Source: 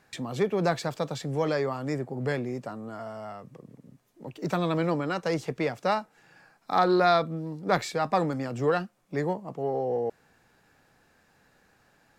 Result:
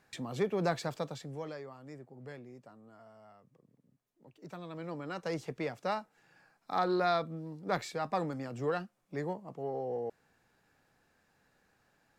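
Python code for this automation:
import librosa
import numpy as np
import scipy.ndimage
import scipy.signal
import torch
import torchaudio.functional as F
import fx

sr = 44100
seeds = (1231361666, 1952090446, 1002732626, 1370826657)

y = fx.gain(x, sr, db=fx.line((0.96, -5.5), (1.64, -18.0), (4.68, -18.0), (5.24, -8.0)))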